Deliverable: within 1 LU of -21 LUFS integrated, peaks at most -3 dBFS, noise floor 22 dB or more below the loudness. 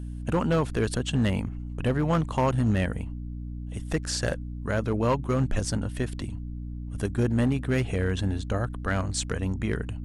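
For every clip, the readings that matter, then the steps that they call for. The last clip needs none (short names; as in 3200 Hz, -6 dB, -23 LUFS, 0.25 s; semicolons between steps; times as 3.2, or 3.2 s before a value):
clipped 0.9%; flat tops at -17.0 dBFS; hum 60 Hz; harmonics up to 300 Hz; hum level -32 dBFS; loudness -28.0 LUFS; peak -17.0 dBFS; loudness target -21.0 LUFS
-> clip repair -17 dBFS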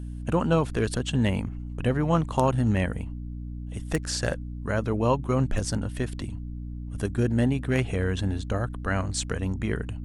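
clipped 0.0%; hum 60 Hz; harmonics up to 300 Hz; hum level -32 dBFS
-> notches 60/120/180/240/300 Hz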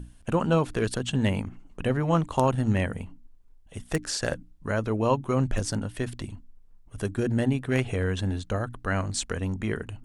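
hum none; loudness -28.0 LUFS; peak -7.5 dBFS; loudness target -21.0 LUFS
-> gain +7 dB; limiter -3 dBFS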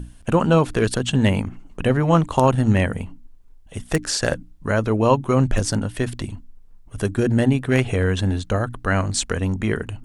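loudness -21.0 LUFS; peak -3.0 dBFS; noise floor -47 dBFS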